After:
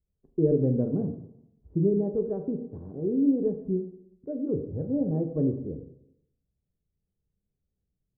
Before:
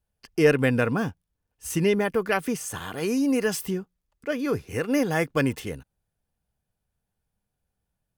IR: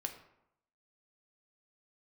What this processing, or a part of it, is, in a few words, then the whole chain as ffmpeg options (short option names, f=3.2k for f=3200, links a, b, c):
next room: -filter_complex "[0:a]lowpass=f=470:w=0.5412,lowpass=f=470:w=1.3066[a];[1:a]atrim=start_sample=2205[b];[a][b]afir=irnorm=-1:irlink=0,asettb=1/sr,asplit=3[c][d][e];[c]atrim=end=4.714[f];[d]atrim=start=4.71:end=5.11,asetpts=PTS-STARTPTS,afade=t=in:d=0.004:c=qsin,afade=t=out:st=0.396:d=0.004:c=qsin,aecho=1:1:1.3:0.69,atrim=end_sample=17640[g];[e]atrim=start=5.106[h];[f][g]acrossfade=d=0.004:c1=hsin:c2=qsin[i];[i][h]acrossfade=d=0.004:c1=qsin:c2=hsin"